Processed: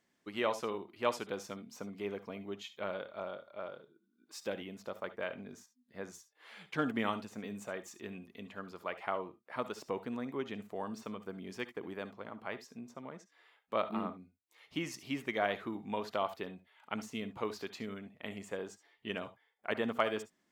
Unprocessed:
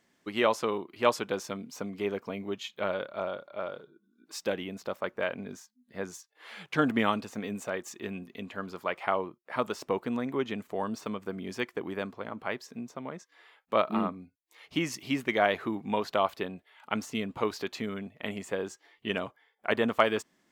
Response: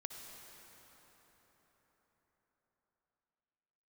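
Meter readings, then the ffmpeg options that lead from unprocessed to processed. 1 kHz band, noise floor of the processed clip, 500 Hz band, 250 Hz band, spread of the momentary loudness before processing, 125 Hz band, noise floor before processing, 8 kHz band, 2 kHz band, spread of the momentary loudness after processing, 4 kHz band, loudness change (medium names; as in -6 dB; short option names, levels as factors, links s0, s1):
-7.5 dB, -78 dBFS, -7.5 dB, -7.5 dB, 13 LU, -7.5 dB, -73 dBFS, -7.5 dB, -7.5 dB, 13 LU, -7.5 dB, -7.5 dB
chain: -filter_complex "[1:a]atrim=start_sample=2205,atrim=end_sample=3528[s0];[0:a][s0]afir=irnorm=-1:irlink=0,volume=0.708"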